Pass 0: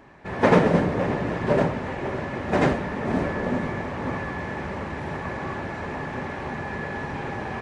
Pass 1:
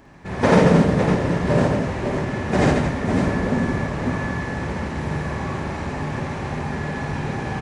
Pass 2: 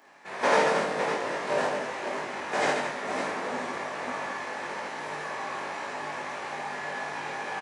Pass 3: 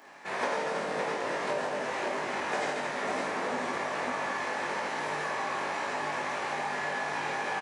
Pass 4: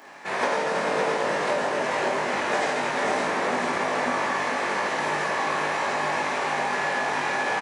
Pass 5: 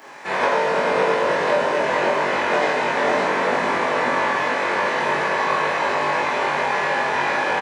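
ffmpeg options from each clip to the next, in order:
-filter_complex "[0:a]bass=f=250:g=6,treble=f=4000:g=9,asplit=2[s0][s1];[s1]aecho=0:1:54|139|226|555:0.708|0.473|0.335|0.398[s2];[s0][s2]amix=inputs=2:normalize=0,volume=0.891"
-filter_complex "[0:a]highpass=630,asplit=2[s0][s1];[s1]adelay=20,volume=0.794[s2];[s0][s2]amix=inputs=2:normalize=0,volume=0.631"
-af "acompressor=threshold=0.0251:ratio=10,volume=1.58"
-af "aecho=1:1:441:0.501,volume=2"
-filter_complex "[0:a]acrossover=split=4600[s0][s1];[s1]acompressor=threshold=0.00251:ratio=4:attack=1:release=60[s2];[s0][s2]amix=inputs=2:normalize=0,asplit=2[s3][s4];[s4]adelay=22,volume=0.794[s5];[s3][s5]amix=inputs=2:normalize=0,volume=1.41"

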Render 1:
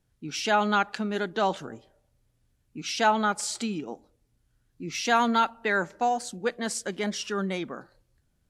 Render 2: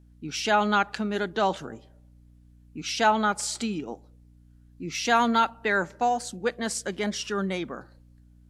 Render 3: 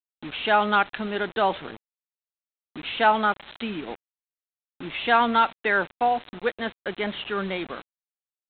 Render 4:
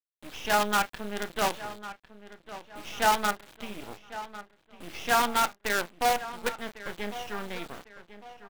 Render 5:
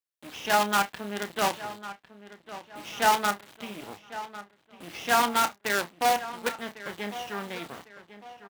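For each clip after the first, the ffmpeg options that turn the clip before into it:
-af "aeval=exprs='val(0)+0.002*(sin(2*PI*60*n/s)+sin(2*PI*2*60*n/s)/2+sin(2*PI*3*60*n/s)/3+sin(2*PI*4*60*n/s)/4+sin(2*PI*5*60*n/s)/5)':c=same,volume=1.12"
-af "lowshelf=f=200:g=-11.5,aresample=8000,acrusher=bits=6:mix=0:aa=0.000001,aresample=44100,volume=1.41"
-filter_complex "[0:a]asplit=2[s0][s1];[s1]adelay=29,volume=0.355[s2];[s0][s2]amix=inputs=2:normalize=0,acrusher=bits=4:dc=4:mix=0:aa=0.000001,asplit=2[s3][s4];[s4]adelay=1102,lowpass=f=4000:p=1,volume=0.188,asplit=2[s5][s6];[s6]adelay=1102,lowpass=f=4000:p=1,volume=0.39,asplit=2[s7][s8];[s8]adelay=1102,lowpass=f=4000:p=1,volume=0.39,asplit=2[s9][s10];[s10]adelay=1102,lowpass=f=4000:p=1,volume=0.39[s11];[s3][s5][s7][s9][s11]amix=inputs=5:normalize=0,volume=0.531"
-filter_complex "[0:a]highpass=100,asplit=2[s0][s1];[s1]adelay=30,volume=0.251[s2];[s0][s2]amix=inputs=2:normalize=0,volume=1.12"

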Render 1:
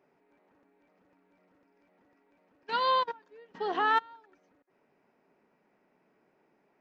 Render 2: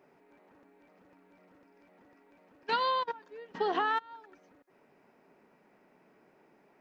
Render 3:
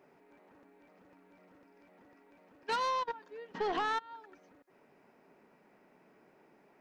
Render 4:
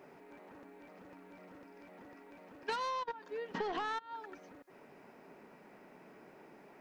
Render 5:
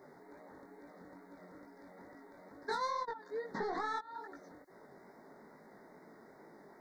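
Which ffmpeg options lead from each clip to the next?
-af "acompressor=threshold=0.0251:ratio=10,volume=2"
-af "asoftclip=type=tanh:threshold=0.0447"
-af "acompressor=threshold=0.00708:ratio=6,volume=2.24"
-af "asuperstop=centerf=2800:order=12:qfactor=1.9,flanger=delay=17.5:depth=5.9:speed=2.3,volume=1.41"

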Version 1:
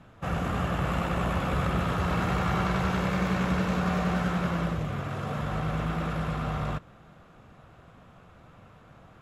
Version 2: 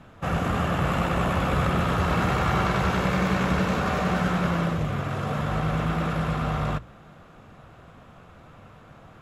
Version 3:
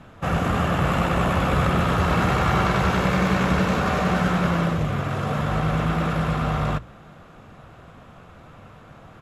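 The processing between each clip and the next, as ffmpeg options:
-af "bandreject=f=60:t=h:w=6,bandreject=f=120:t=h:w=6,bandreject=f=180:t=h:w=6,volume=1.68"
-af "aresample=32000,aresample=44100,volume=1.41"

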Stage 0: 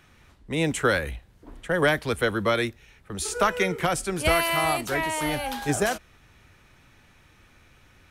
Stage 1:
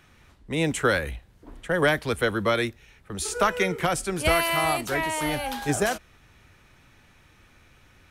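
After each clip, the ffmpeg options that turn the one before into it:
-af anull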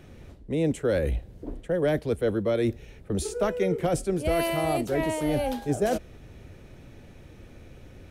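-af "lowshelf=f=760:t=q:w=1.5:g=10.5,areverse,acompressor=threshold=0.0631:ratio=4,areverse"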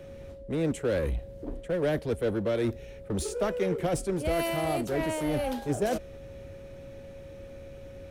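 -filter_complex "[0:a]aeval=exprs='val(0)+0.00631*sin(2*PI*550*n/s)':c=same,asplit=2[s0][s1];[s1]aeval=exprs='0.0316*(abs(mod(val(0)/0.0316+3,4)-2)-1)':c=same,volume=0.355[s2];[s0][s2]amix=inputs=2:normalize=0,volume=0.708"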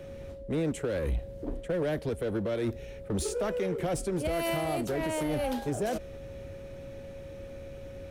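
-af "alimiter=limit=0.0668:level=0:latency=1:release=91,volume=1.19"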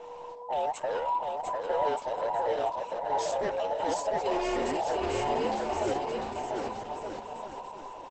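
-af "afftfilt=real='real(if(between(b,1,1008),(2*floor((b-1)/48)+1)*48-b,b),0)':imag='imag(if(between(b,1,1008),(2*floor((b-1)/48)+1)*48-b,b),0)*if(between(b,1,1008),-1,1)':win_size=2048:overlap=0.75,aecho=1:1:700|1225|1619|1914|2136:0.631|0.398|0.251|0.158|0.1" -ar 48000 -c:a libopus -b:a 12k

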